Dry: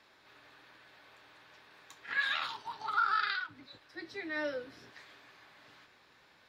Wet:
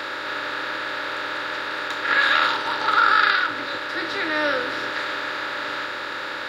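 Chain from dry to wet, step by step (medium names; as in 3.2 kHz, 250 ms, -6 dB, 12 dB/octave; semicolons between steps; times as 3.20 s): spectral levelling over time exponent 0.4; trim +9 dB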